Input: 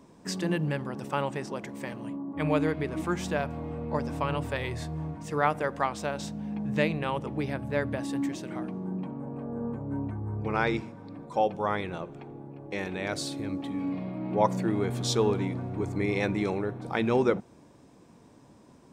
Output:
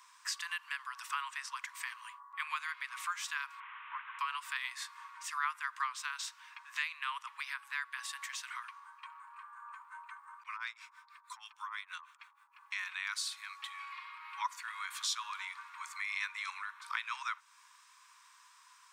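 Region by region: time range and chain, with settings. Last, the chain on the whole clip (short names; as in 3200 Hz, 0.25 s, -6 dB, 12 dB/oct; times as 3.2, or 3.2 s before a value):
3.6–4.19 delta modulation 16 kbps, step -39 dBFS + air absorption 450 m
10.43–12.55 high shelf 4900 Hz +4.5 dB + harmonic tremolo 6.3 Hz, depth 100%, crossover 950 Hz + compressor 2:1, threshold -41 dBFS
whole clip: steep high-pass 1000 Hz 96 dB/oct; compressor 2:1, threshold -46 dBFS; gain +6 dB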